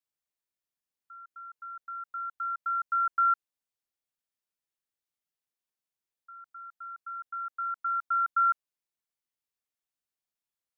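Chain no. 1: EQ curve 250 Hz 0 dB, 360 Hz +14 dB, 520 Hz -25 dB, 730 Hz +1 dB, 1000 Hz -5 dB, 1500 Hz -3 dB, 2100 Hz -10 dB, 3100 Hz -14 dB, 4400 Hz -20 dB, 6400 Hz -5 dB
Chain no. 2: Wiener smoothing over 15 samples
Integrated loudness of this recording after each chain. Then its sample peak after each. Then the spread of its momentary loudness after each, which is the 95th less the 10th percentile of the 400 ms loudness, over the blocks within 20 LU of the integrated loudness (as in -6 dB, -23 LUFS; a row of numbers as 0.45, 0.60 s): -33.0, -30.0 LUFS; -23.0, -20.5 dBFS; 20, 22 LU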